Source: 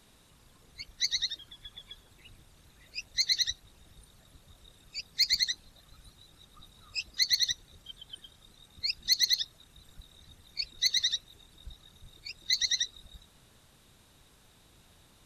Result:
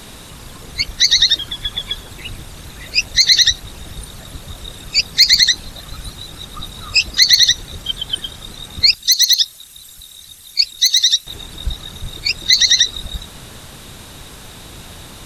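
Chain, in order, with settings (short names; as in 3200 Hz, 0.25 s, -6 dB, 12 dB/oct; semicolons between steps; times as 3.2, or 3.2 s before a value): 8.94–11.27 pre-emphasis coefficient 0.9; maximiser +25.5 dB; gain -1 dB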